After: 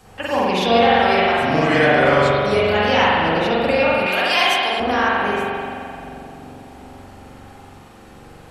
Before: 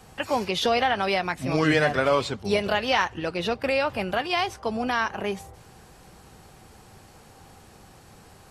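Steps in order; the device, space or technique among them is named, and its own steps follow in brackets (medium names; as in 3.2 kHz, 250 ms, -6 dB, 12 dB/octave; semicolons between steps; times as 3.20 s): dub delay into a spring reverb (filtered feedback delay 391 ms, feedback 82%, low-pass 840 Hz, level -16 dB; spring tank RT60 2.2 s, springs 43 ms, chirp 70 ms, DRR -7.5 dB); 4.06–4.80 s: tilt EQ +4 dB/octave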